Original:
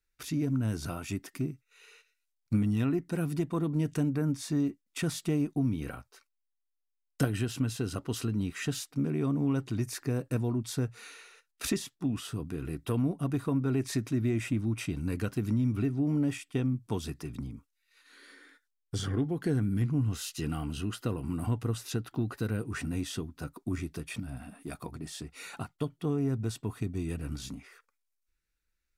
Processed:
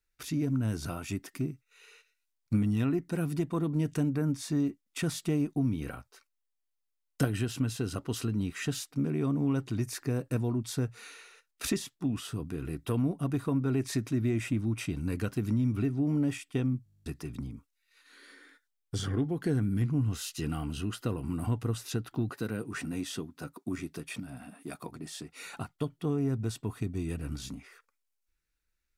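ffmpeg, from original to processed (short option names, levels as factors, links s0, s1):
-filter_complex "[0:a]asettb=1/sr,asplit=3[s0][s1][s2];[s0]atrim=end=22.294[s3];[s1]atrim=start=22.29:end=25.4,asetpts=PTS-STARTPTS,afade=t=in:d=0.004:c=qsin,afade=t=out:st=3.106:d=0.004:c=qsin,highpass=150[s4];[s2]atrim=start=25.396[s5];[s3][s4]acrossfade=d=0.004:c1=hsin:c2=qsin[s6];[s6][s5]acrossfade=d=0.004:c1=qsin:c2=hsin,asplit=12[s7][s8][s9][s10][s11][s12][s13][s14][s15][s16][s17][s18];[s7]atrim=end=16.862[s19];[s8]atrim=start=16.838:end=16.862[s20];[s9]atrim=start=16.838:end=16.862[s21];[s10]atrim=start=16.838:end=16.862[s22];[s11]atrim=start=16.838:end=16.862[s23];[s12]atrim=start=16.838:end=16.862[s24];[s13]atrim=start=16.838:end=16.862[s25];[s14]atrim=start=16.838:end=16.862[s26];[s15]atrim=start=16.838:end=16.862[s27];[s16]atrim=start=16.838:end=16.862[s28];[s17]atrim=start=16.838:end=16.862[s29];[s18]atrim=start=17.058[s30];[s19][s20]acrossfade=d=0.004:c1=hsin:c2=hsin[s31];[s31][s21]acrossfade=d=0.004:c1=hsin:c2=hsin[s32];[s32][s22]acrossfade=d=0.004:c1=hsin:c2=hsin[s33];[s33][s23]acrossfade=d=0.004:c1=hsin:c2=hsin[s34];[s34][s24]acrossfade=d=0.004:c1=hsin:c2=hsin[s35];[s35][s25]acrossfade=d=0.004:c1=hsin:c2=hsin[s36];[s36][s26]acrossfade=d=0.004:c1=hsin:c2=hsin[s37];[s37][s27]acrossfade=d=0.004:c1=hsin:c2=hsin[s38];[s38][s28]acrossfade=d=0.004:c1=hsin:c2=hsin[s39];[s39][s29]acrossfade=d=0.004:c1=hsin:c2=hsin[s40];[s40][s30]acrossfade=d=0.004:c1=hsin:c2=hsin"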